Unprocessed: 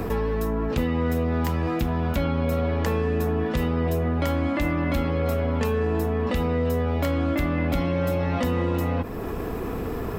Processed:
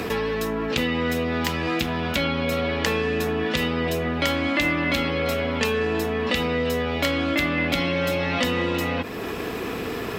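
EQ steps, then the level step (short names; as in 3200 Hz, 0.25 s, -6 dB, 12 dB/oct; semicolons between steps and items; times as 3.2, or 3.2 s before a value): weighting filter D; +1.5 dB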